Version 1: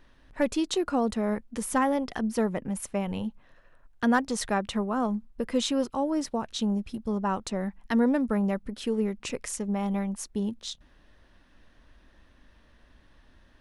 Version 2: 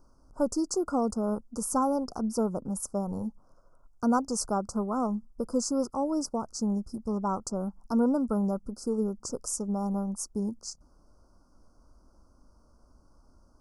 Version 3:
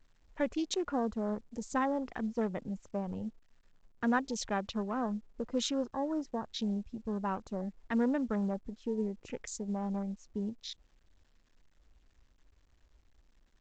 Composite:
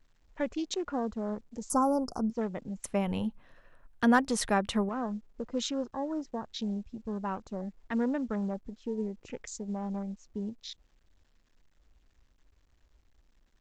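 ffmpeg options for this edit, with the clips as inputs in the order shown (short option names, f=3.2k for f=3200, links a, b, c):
-filter_complex "[2:a]asplit=3[a][b][c];[a]atrim=end=1.702[d];[1:a]atrim=start=1.698:end=2.302[e];[b]atrim=start=2.298:end=2.842[f];[0:a]atrim=start=2.838:end=4.892[g];[c]atrim=start=4.888[h];[d][e]acrossfade=d=0.004:c1=hsin:c2=hsin[i];[i][f]acrossfade=d=0.004:c1=hsin:c2=hsin[j];[j][g]acrossfade=d=0.004:c1=hsin:c2=hsin[k];[k][h]acrossfade=d=0.004:c1=hsin:c2=hsin"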